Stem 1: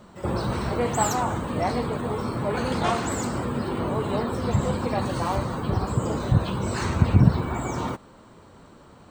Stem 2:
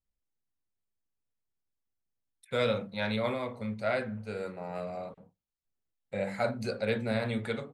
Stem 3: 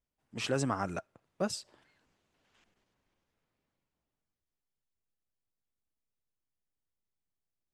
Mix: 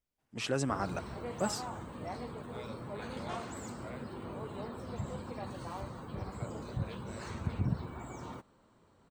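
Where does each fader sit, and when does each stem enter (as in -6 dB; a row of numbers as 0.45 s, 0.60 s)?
-16.0 dB, -19.0 dB, -1.0 dB; 0.45 s, 0.00 s, 0.00 s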